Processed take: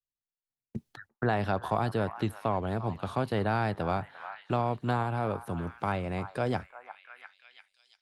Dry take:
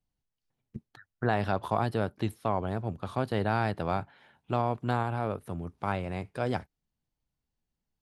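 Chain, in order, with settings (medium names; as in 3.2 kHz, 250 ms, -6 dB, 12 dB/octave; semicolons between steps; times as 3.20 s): expander -54 dBFS; repeats whose band climbs or falls 347 ms, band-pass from 1.1 kHz, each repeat 0.7 oct, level -11.5 dB; three bands compressed up and down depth 40%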